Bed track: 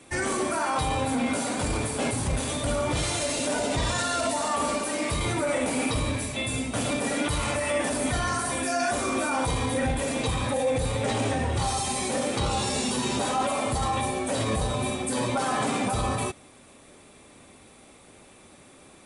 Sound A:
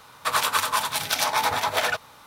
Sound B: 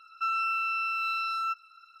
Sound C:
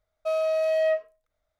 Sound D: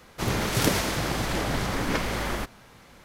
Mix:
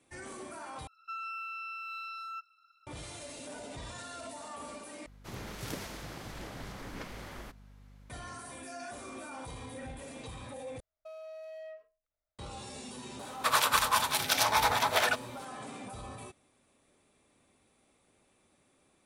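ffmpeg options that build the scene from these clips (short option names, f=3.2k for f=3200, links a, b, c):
-filter_complex "[0:a]volume=-17.5dB[a];[4:a]aeval=exprs='val(0)+0.0141*(sin(2*PI*50*n/s)+sin(2*PI*2*50*n/s)/2+sin(2*PI*3*50*n/s)/3+sin(2*PI*4*50*n/s)/4+sin(2*PI*5*50*n/s)/5)':c=same[b];[3:a]acompressor=threshold=-29dB:ratio=6:attack=3.2:release=140:knee=1:detection=peak[c];[a]asplit=4[d][e][f][g];[d]atrim=end=0.874[h];[2:a]atrim=end=2,asetpts=PTS-STARTPTS,volume=-11dB[i];[e]atrim=start=2.866:end=5.064[j];[b]atrim=end=3.04,asetpts=PTS-STARTPTS,volume=-16.5dB[k];[f]atrim=start=8.096:end=10.804[l];[c]atrim=end=1.59,asetpts=PTS-STARTPTS,volume=-14.5dB[m];[g]atrim=start=12.386[n];[1:a]atrim=end=2.26,asetpts=PTS-STARTPTS,volume=-3.5dB,afade=t=in:d=0.004:c=hsin,afade=t=out:st=2.256:d=0.004:c=hsin,adelay=13190[o];[h][i]acrossfade=d=0.004:c1=hsin:c2=hsin[p];[p][j]acrossfade=d=0.004:c1=hsin:c2=hsin[q];[q][k]acrossfade=d=0.004:c1=hsin:c2=hsin[r];[r][l]acrossfade=d=0.004:c1=hsin:c2=hsin[s];[s][m]acrossfade=d=0.004:c1=hsin:c2=hsin[t];[t][n]acrossfade=d=0.004:c1=hsin:c2=hsin[u];[u][o]amix=inputs=2:normalize=0"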